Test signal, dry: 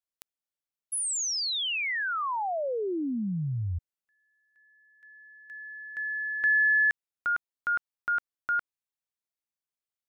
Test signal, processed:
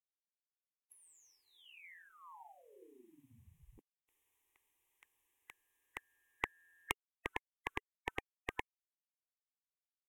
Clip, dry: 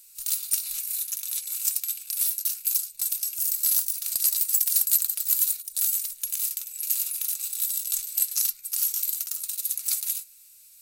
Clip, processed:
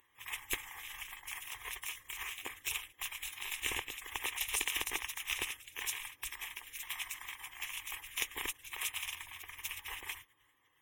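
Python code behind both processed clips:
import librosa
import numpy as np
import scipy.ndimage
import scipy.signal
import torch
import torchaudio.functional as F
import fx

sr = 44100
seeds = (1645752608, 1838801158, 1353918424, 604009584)

y = fx.spec_gate(x, sr, threshold_db=-30, keep='weak')
y = fx.fixed_phaser(y, sr, hz=940.0, stages=8)
y = fx.env_lowpass_down(y, sr, base_hz=830.0, full_db=-25.5)
y = F.gain(torch.from_numpy(y), 16.0).numpy()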